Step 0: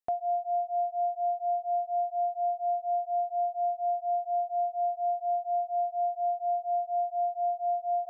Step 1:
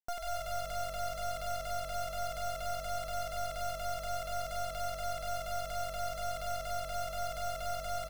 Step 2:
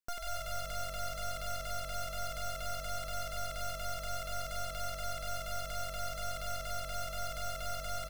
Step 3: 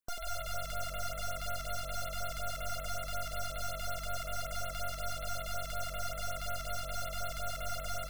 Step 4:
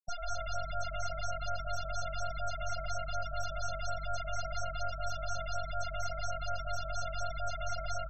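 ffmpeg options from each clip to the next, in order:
-filter_complex "[0:a]acrusher=bits=3:dc=4:mix=0:aa=0.000001,asplit=2[a][b];[b]asplit=6[c][d][e][f][g][h];[c]adelay=91,afreqshift=-48,volume=-7dB[i];[d]adelay=182,afreqshift=-96,volume=-12.7dB[j];[e]adelay=273,afreqshift=-144,volume=-18.4dB[k];[f]adelay=364,afreqshift=-192,volume=-24dB[l];[g]adelay=455,afreqshift=-240,volume=-29.7dB[m];[h]adelay=546,afreqshift=-288,volume=-35.4dB[n];[i][j][k][l][m][n]amix=inputs=6:normalize=0[o];[a][o]amix=inputs=2:normalize=0,volume=-5.5dB"
-af "equalizer=f=750:t=o:w=0.41:g=-11,volume=1.5dB"
-af "areverse,acompressor=mode=upward:threshold=-44dB:ratio=2.5,areverse,afftfilt=real='re*(1-between(b*sr/1024,430*pow(6600/430,0.5+0.5*sin(2*PI*5.4*pts/sr))/1.41,430*pow(6600/430,0.5+0.5*sin(2*PI*5.4*pts/sr))*1.41))':imag='im*(1-between(b*sr/1024,430*pow(6600/430,0.5+0.5*sin(2*PI*5.4*pts/sr))/1.41,430*pow(6600/430,0.5+0.5*sin(2*PI*5.4*pts/sr))*1.41))':win_size=1024:overlap=0.75,volume=1.5dB"
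-af "afftfilt=real='re*gte(hypot(re,im),0.02)':imag='im*gte(hypot(re,im),0.02)':win_size=1024:overlap=0.75,volume=2.5dB"

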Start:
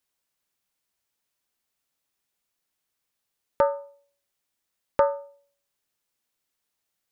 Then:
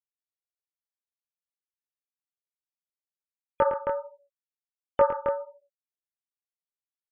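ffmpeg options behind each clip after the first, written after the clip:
-af "afftfilt=real='re*gte(hypot(re,im),0.00891)':imag='im*gte(hypot(re,im),0.00891)':win_size=1024:overlap=0.75,aecho=1:1:110.8|268.2:0.355|0.501,flanger=delay=19.5:depth=5.8:speed=1.4,volume=2.5dB"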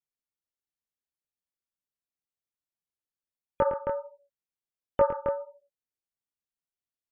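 -af "lowshelf=f=430:g=9.5,volume=-5dB"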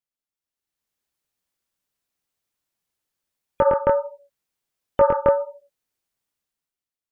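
-af "alimiter=limit=-17.5dB:level=0:latency=1:release=95,dynaudnorm=f=130:g=11:m=12dB"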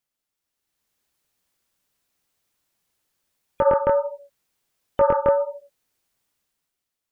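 -af "alimiter=limit=-16dB:level=0:latency=1:release=266,volume=7.5dB"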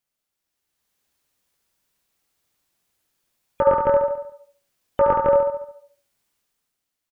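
-af "aecho=1:1:71|142|213|284|355|426:0.596|0.286|0.137|0.0659|0.0316|0.0152"

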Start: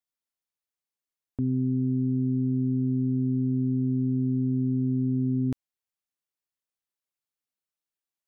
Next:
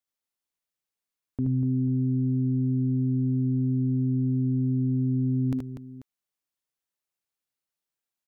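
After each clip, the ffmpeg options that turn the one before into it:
-af "aecho=1:1:61|76|243|489:0.2|0.631|0.355|0.15"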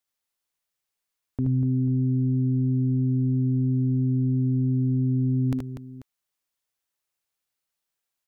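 -af "equalizer=f=240:t=o:w=1.8:g=-4.5,volume=5dB"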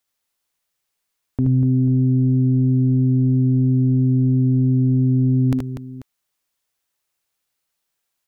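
-af "acontrast=74"

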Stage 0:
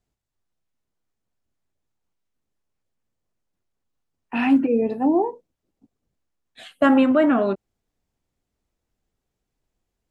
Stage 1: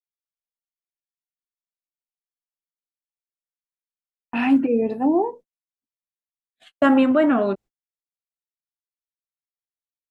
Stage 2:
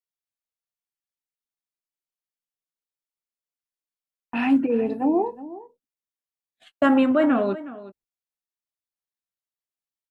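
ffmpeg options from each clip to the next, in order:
-af "agate=range=-41dB:threshold=-40dB:ratio=16:detection=peak"
-af "aecho=1:1:366:0.15,volume=-2dB"

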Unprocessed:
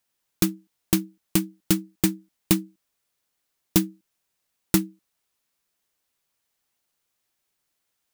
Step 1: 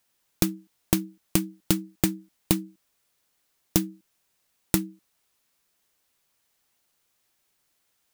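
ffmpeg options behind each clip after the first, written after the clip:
-af "acompressor=threshold=-23dB:ratio=12,volume=5dB"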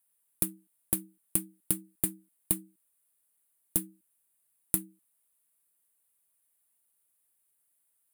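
-af "highshelf=f=7.6k:t=q:w=3:g=10.5,volume=-13dB"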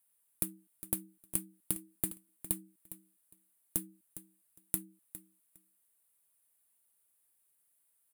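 -af "acompressor=threshold=-33dB:ratio=2,aecho=1:1:408|816:0.2|0.0319"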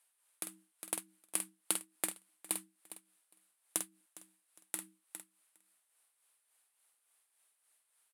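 -filter_complex "[0:a]tremolo=f=3.5:d=0.57,highpass=630,lowpass=7.3k,asplit=2[a][b];[b]adelay=48,volume=-7dB[c];[a][c]amix=inputs=2:normalize=0,volume=10dB"

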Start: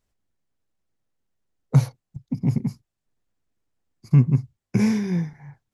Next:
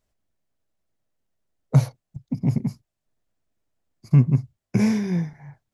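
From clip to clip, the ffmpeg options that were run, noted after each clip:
-af "equalizer=f=630:t=o:w=0.28:g=7"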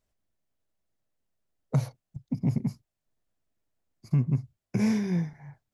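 -af "alimiter=limit=-12.5dB:level=0:latency=1:release=157,volume=-3.5dB"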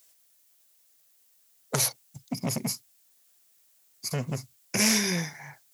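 -af "aeval=exprs='0.168*sin(PI/2*1.41*val(0)/0.168)':c=same,highpass=f=520:p=1,crystalizer=i=8.5:c=0"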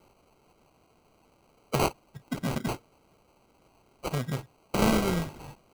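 -af "acrusher=samples=25:mix=1:aa=0.000001"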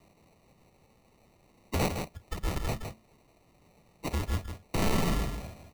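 -af "afreqshift=-220,asoftclip=type=tanh:threshold=-20dB,aecho=1:1:161:0.447"

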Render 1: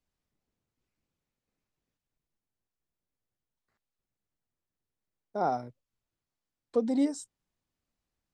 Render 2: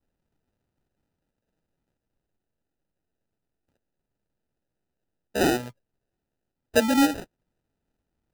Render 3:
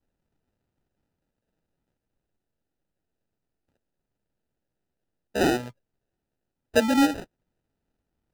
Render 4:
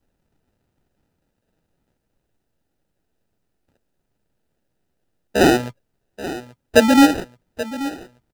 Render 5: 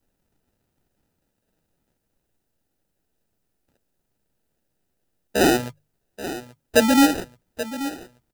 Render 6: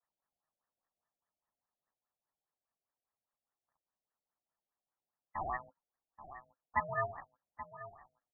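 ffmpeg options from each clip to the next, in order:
-af "acrusher=samples=40:mix=1:aa=0.000001,volume=6.5dB"
-af "highshelf=f=7.9k:g=-7"
-af "aecho=1:1:831|1662|2493|3324|4155:0.188|0.0923|0.0452|0.0222|0.0109,volume=8.5dB"
-filter_complex "[0:a]highshelf=f=6k:g=8.5,bandreject=f=50:t=h:w=6,bandreject=f=100:t=h:w=6,bandreject=f=150:t=h:w=6,asplit=2[a][b];[b]asoftclip=type=tanh:threshold=-11.5dB,volume=-5dB[c];[a][c]amix=inputs=2:normalize=0,volume=-6.5dB"
-af "aderivative,lowpass=f=3.1k:t=q:w=0.5098,lowpass=f=3.1k:t=q:w=0.6013,lowpass=f=3.1k:t=q:w=0.9,lowpass=f=3.1k:t=q:w=2.563,afreqshift=-3700,afftfilt=real='re*lt(b*sr/1024,730*pow(2000/730,0.5+0.5*sin(2*PI*4.9*pts/sr)))':imag='im*lt(b*sr/1024,730*pow(2000/730,0.5+0.5*sin(2*PI*4.9*pts/sr)))':win_size=1024:overlap=0.75,volume=6dB"

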